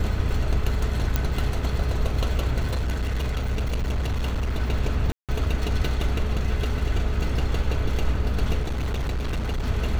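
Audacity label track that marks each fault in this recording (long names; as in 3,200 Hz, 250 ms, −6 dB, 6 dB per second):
1.160000	1.160000	click −8 dBFS
2.620000	4.530000	clipping −21 dBFS
5.120000	5.290000	drop-out 167 ms
8.620000	9.690000	clipping −22.5 dBFS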